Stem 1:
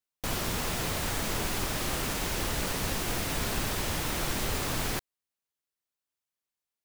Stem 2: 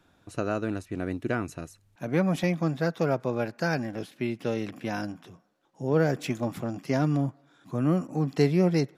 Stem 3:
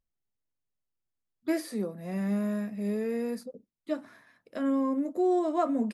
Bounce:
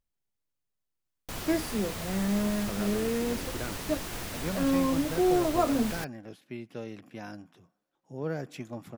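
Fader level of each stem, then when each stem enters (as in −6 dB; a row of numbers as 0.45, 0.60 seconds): −6.0, −10.0, +1.0 decibels; 1.05, 2.30, 0.00 seconds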